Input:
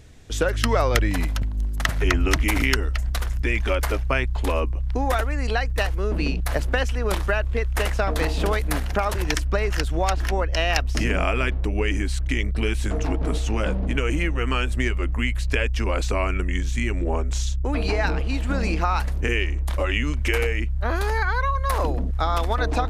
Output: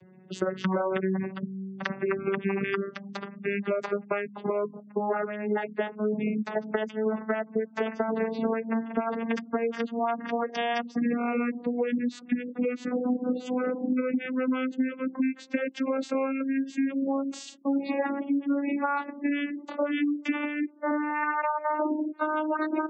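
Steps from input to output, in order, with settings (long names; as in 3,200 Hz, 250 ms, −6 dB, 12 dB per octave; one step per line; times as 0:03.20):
vocoder with a gliding carrier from F#3, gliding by +9 semitones
gate on every frequency bin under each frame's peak −25 dB strong
downward compressor, threshold −26 dBFS, peak gain reduction 9 dB
level +2.5 dB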